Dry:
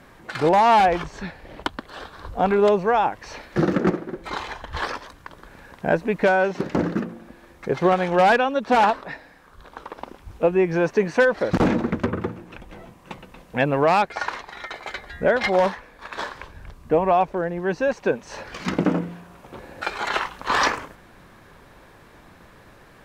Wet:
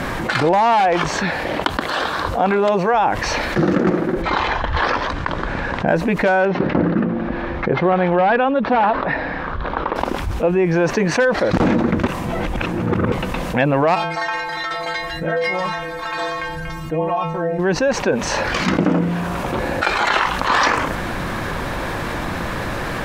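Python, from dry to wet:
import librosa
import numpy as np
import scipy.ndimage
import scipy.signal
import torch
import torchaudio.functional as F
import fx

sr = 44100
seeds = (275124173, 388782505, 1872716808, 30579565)

y = fx.highpass(x, sr, hz=250.0, slope=6, at=(0.73, 2.94))
y = fx.air_absorb(y, sr, metres=130.0, at=(4.22, 5.88))
y = fx.air_absorb(y, sr, metres=310.0, at=(6.45, 9.96))
y = fx.stiff_resonator(y, sr, f0_hz=160.0, decay_s=0.53, stiffness=0.008, at=(13.94, 17.58), fade=0.02)
y = fx.edit(y, sr, fx.reverse_span(start_s=12.06, length_s=1.06), tone=tone)
y = fx.high_shelf(y, sr, hz=7800.0, db=-5.5)
y = fx.notch(y, sr, hz=420.0, q=12.0)
y = fx.env_flatten(y, sr, amount_pct=70)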